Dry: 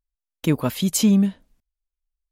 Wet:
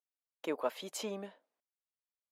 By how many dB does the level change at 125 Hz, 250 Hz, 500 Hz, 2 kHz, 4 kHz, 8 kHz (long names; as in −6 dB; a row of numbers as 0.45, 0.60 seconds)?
below −30 dB, −26.0 dB, −8.0 dB, −12.0 dB, −15.5 dB, −20.0 dB